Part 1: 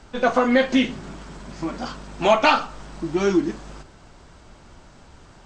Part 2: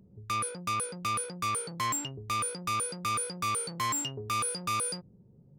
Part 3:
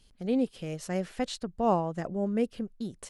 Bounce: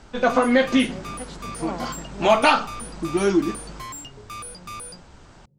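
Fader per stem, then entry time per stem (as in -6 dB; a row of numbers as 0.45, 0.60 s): 0.0, -5.5, -8.0 dB; 0.00, 0.00, 0.00 s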